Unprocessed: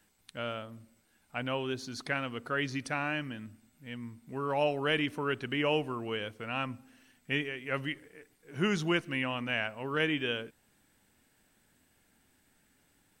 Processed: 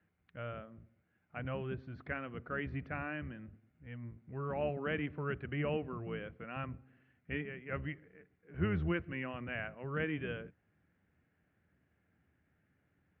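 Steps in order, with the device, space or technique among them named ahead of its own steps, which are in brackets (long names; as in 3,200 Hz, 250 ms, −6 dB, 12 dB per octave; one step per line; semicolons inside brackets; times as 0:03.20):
sub-octave bass pedal (sub-octave generator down 1 octave, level −2 dB; loudspeaker in its box 67–2,200 Hz, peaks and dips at 78 Hz +8 dB, 170 Hz +6 dB, 240 Hz −3 dB, 910 Hz −7 dB)
level −6 dB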